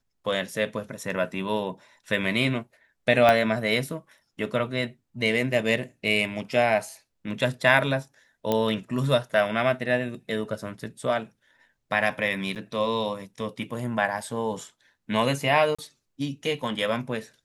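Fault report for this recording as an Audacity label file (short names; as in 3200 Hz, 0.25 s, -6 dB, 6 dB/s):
3.290000	3.290000	pop -8 dBFS
8.520000	8.520000	pop -11 dBFS
12.550000	12.560000	gap 8.3 ms
15.750000	15.790000	gap 35 ms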